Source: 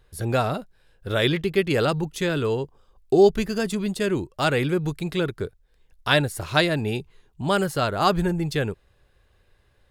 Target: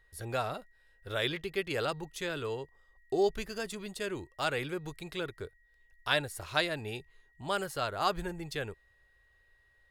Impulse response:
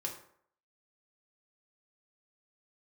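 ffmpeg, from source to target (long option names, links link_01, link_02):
-af "equalizer=frequency=190:width_type=o:width=1.9:gain=-10,aeval=exprs='val(0)+0.00126*sin(2*PI*1900*n/s)':channel_layout=same,volume=-8dB"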